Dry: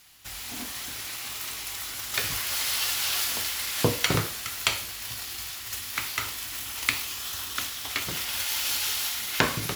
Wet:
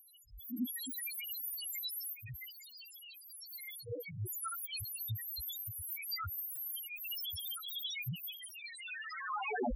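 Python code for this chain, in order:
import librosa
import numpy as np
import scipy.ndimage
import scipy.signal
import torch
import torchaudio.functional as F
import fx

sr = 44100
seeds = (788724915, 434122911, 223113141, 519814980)

y = fx.tape_stop_end(x, sr, length_s=1.42)
y = fx.high_shelf(y, sr, hz=9900.0, db=8.0)
y = fx.over_compress(y, sr, threshold_db=-31.0, ratio=-0.5)
y = fx.auto_swell(y, sr, attack_ms=437.0)
y = fx.spec_topn(y, sr, count=1)
y = F.gain(torch.from_numpy(y), 12.0).numpy()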